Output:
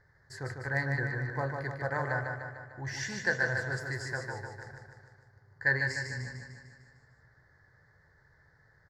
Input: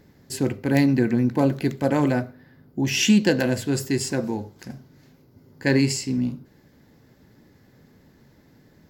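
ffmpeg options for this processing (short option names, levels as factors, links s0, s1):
-filter_complex "[0:a]firequalizer=gain_entry='entry(120,0);entry(230,-24);entry(420,-7);entry(660,-2);entry(1800,11);entry(2600,-23);entry(4400,-5);entry(14000,-24)':delay=0.05:min_phase=1,asplit=2[s0][s1];[s1]aecho=0:1:150|300|450|600|750|900|1050|1200:0.562|0.321|0.183|0.104|0.0594|0.0338|0.0193|0.011[s2];[s0][s2]amix=inputs=2:normalize=0,volume=0.398"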